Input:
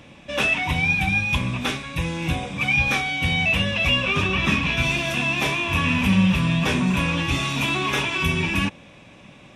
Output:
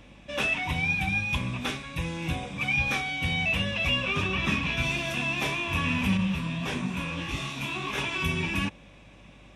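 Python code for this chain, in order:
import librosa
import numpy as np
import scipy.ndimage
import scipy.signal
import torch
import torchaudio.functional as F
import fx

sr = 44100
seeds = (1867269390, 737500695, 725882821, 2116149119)

y = fx.add_hum(x, sr, base_hz=50, snr_db=27)
y = fx.detune_double(y, sr, cents=59, at=(6.17, 7.98))
y = F.gain(torch.from_numpy(y), -6.0).numpy()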